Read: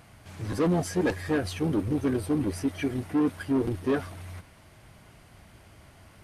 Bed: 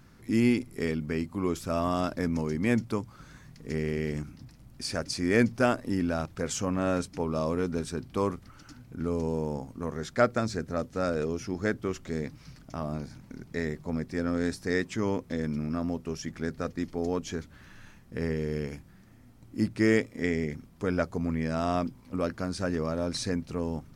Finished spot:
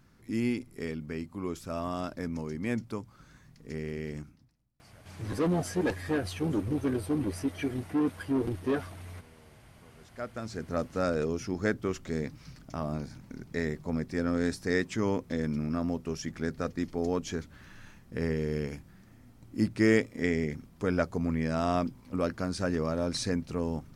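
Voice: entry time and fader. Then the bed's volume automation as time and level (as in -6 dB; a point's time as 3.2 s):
4.80 s, -3.0 dB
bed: 4.21 s -6 dB
4.73 s -29.5 dB
9.72 s -29.5 dB
10.75 s 0 dB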